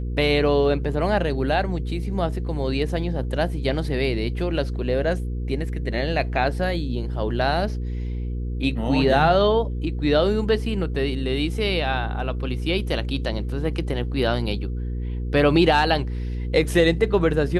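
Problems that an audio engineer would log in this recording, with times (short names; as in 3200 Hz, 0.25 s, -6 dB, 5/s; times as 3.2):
hum 60 Hz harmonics 8 -27 dBFS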